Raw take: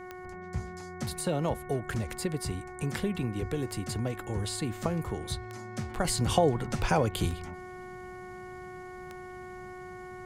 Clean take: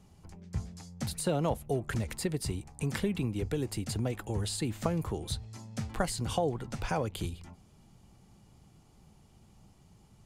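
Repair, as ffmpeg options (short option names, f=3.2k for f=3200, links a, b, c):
-af "adeclick=t=4,bandreject=f=366.1:t=h:w=4,bandreject=f=732.2:t=h:w=4,bandreject=f=1.0983k:t=h:w=4,bandreject=f=1.4644k:t=h:w=4,bandreject=f=1.8305k:t=h:w=4,bandreject=f=2.1966k:t=h:w=4,asetnsamples=n=441:p=0,asendcmd='6.05 volume volume -6dB',volume=0dB"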